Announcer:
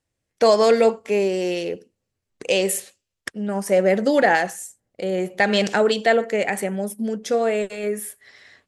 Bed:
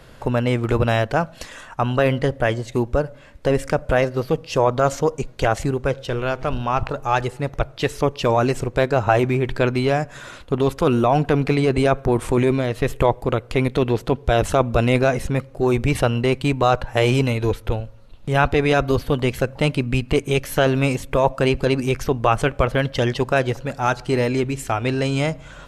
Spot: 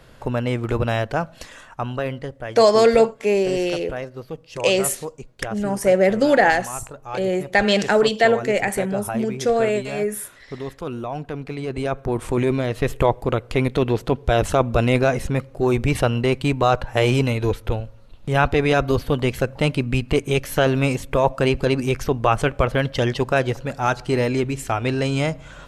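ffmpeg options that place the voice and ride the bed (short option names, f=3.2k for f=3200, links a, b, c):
-filter_complex "[0:a]adelay=2150,volume=1.5dB[a];[1:a]volume=8.5dB,afade=t=out:st=1.46:d=0.87:silence=0.354813,afade=t=in:st=11.52:d=1.23:silence=0.266073[b];[a][b]amix=inputs=2:normalize=0"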